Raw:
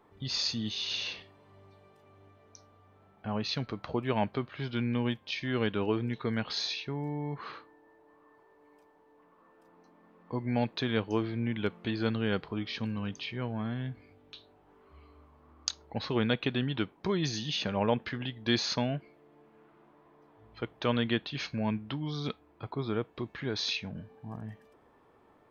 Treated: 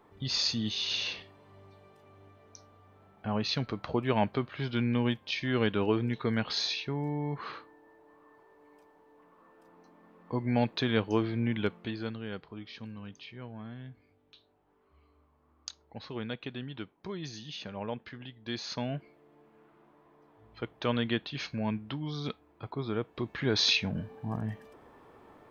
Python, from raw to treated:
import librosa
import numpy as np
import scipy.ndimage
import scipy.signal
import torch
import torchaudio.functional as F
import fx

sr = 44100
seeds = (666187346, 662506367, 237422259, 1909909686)

y = fx.gain(x, sr, db=fx.line((11.6, 2.0), (12.2, -9.0), (18.57, -9.0), (18.98, -1.0), (22.94, -1.0), (23.62, 7.0)))